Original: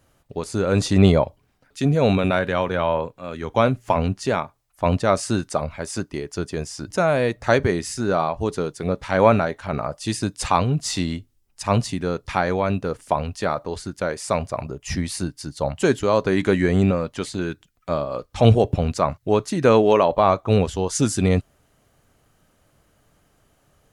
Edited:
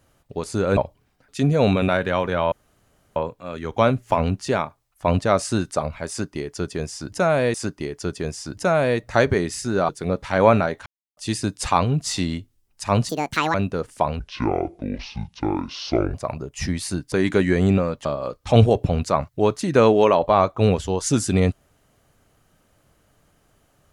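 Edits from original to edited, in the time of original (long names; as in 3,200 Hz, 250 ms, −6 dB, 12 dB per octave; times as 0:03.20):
0:00.77–0:01.19: remove
0:02.94: splice in room tone 0.64 s
0:05.87–0:07.32: repeat, 2 plays
0:08.22–0:08.68: remove
0:09.65–0:09.96: silence
0:11.88–0:12.65: play speed 170%
0:13.30–0:14.43: play speed 58%
0:15.41–0:16.25: remove
0:17.18–0:17.94: remove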